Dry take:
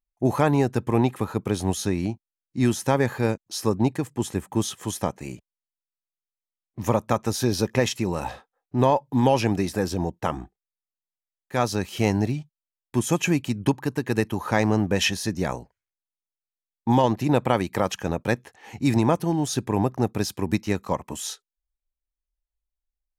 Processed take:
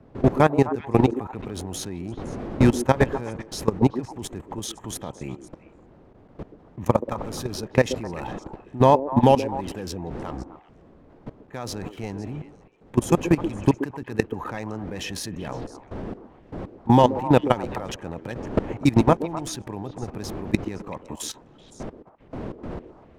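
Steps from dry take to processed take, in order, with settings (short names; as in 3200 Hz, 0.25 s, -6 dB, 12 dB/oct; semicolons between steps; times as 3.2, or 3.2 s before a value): Wiener smoothing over 9 samples; wind noise 400 Hz -35 dBFS; level quantiser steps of 19 dB; delay with a stepping band-pass 0.128 s, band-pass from 360 Hz, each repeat 1.4 oct, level -7.5 dB; gain +5.5 dB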